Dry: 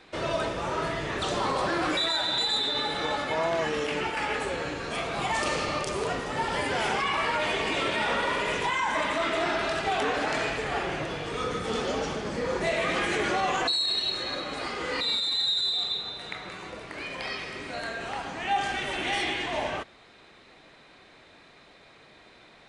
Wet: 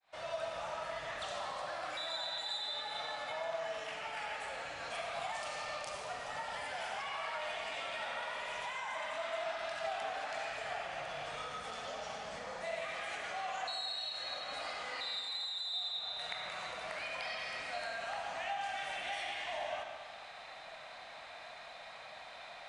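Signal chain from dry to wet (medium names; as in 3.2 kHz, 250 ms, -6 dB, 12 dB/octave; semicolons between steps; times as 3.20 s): fade-in on the opening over 0.77 s; compression 12:1, threshold -40 dBFS, peak gain reduction 18.5 dB; resonant low shelf 510 Hz -10.5 dB, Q 3; reverberation RT60 1.9 s, pre-delay 30 ms, DRR 3 dB; dynamic bell 900 Hz, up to -5 dB, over -52 dBFS, Q 1.3; trim +1.5 dB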